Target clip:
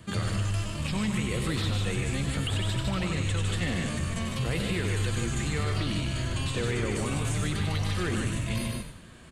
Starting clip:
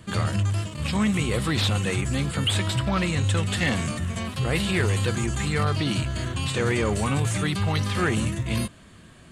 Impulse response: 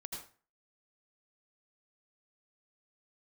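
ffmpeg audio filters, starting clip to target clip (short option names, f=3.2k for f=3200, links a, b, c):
-filter_complex "[0:a]asplit=2[a][b];[b]aecho=0:1:99.13|151.6:0.282|0.501[c];[a][c]amix=inputs=2:normalize=0,acrossover=split=650|1700[d][e][f];[d]acompressor=threshold=-25dB:ratio=4[g];[e]acompressor=threshold=-43dB:ratio=4[h];[f]acompressor=threshold=-34dB:ratio=4[i];[g][h][i]amix=inputs=3:normalize=0,asplit=2[j][k];[k]asplit=4[l][m][n][o];[l]adelay=94,afreqshift=-78,volume=-8.5dB[p];[m]adelay=188,afreqshift=-156,volume=-18.1dB[q];[n]adelay=282,afreqshift=-234,volume=-27.8dB[r];[o]adelay=376,afreqshift=-312,volume=-37.4dB[s];[p][q][r][s]amix=inputs=4:normalize=0[t];[j][t]amix=inputs=2:normalize=0,volume=-2dB"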